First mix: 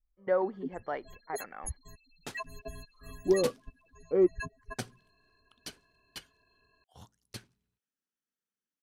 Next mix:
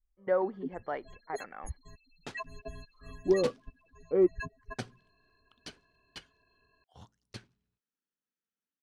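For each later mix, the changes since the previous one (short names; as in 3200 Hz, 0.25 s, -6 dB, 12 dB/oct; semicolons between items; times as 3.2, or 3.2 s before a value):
master: add air absorption 77 m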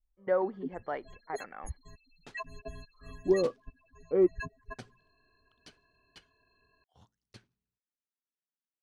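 second sound -8.5 dB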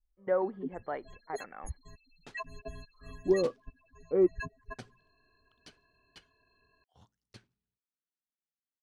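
speech: add air absorption 260 m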